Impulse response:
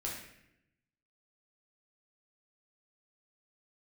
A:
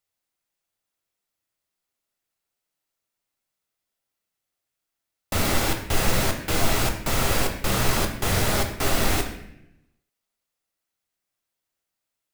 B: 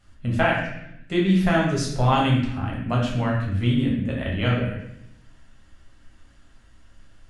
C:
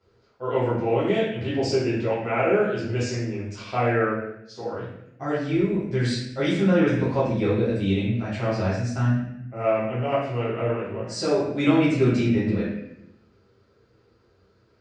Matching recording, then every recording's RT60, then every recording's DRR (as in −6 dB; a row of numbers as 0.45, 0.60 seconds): B; 0.80, 0.80, 0.80 seconds; 3.5, −4.0, −11.5 decibels